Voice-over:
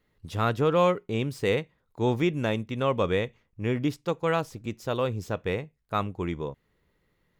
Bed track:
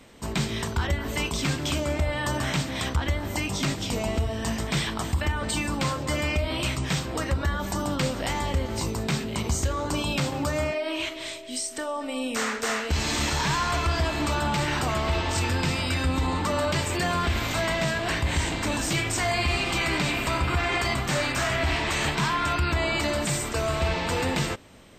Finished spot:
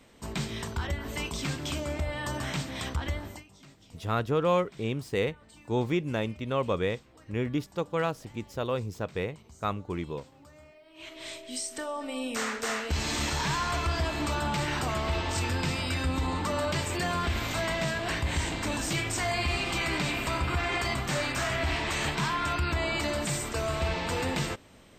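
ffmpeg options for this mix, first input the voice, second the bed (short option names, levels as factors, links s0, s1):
-filter_complex "[0:a]adelay=3700,volume=0.708[s0];[1:a]volume=7.08,afade=t=out:st=3.17:d=0.27:silence=0.0891251,afade=t=in:st=10.94:d=0.41:silence=0.0707946[s1];[s0][s1]amix=inputs=2:normalize=0"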